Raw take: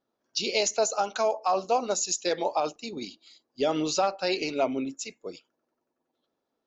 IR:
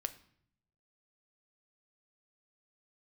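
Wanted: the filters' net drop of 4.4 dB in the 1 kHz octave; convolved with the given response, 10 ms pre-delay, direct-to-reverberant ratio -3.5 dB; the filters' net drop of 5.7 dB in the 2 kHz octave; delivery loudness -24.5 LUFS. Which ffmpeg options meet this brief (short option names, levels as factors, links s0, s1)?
-filter_complex "[0:a]equalizer=f=1000:t=o:g=-5.5,equalizer=f=2000:t=o:g=-6.5,asplit=2[s0][s1];[1:a]atrim=start_sample=2205,adelay=10[s2];[s1][s2]afir=irnorm=-1:irlink=0,volume=1.58[s3];[s0][s3]amix=inputs=2:normalize=0,volume=1.06"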